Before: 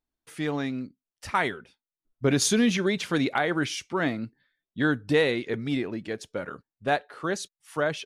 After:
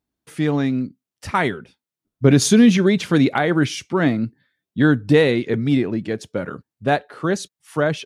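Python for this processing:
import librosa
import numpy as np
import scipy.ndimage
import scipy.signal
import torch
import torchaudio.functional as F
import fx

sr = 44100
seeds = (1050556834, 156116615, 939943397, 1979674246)

y = scipy.signal.sosfilt(scipy.signal.butter(2, 93.0, 'highpass', fs=sr, output='sos'), x)
y = fx.low_shelf(y, sr, hz=310.0, db=11.0)
y = y * librosa.db_to_amplitude(4.0)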